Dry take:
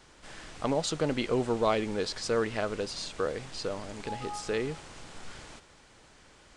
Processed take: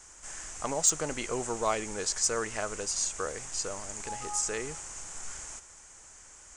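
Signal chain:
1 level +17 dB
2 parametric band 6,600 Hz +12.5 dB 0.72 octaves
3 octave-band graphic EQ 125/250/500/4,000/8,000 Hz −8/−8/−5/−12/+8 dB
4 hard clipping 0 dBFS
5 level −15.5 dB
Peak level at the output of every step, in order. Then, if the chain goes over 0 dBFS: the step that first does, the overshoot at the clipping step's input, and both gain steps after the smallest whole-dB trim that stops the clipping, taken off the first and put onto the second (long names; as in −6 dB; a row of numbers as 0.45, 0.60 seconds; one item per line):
+5.0, +5.5, +7.0, 0.0, −15.5 dBFS
step 1, 7.0 dB
step 1 +10 dB, step 5 −8.5 dB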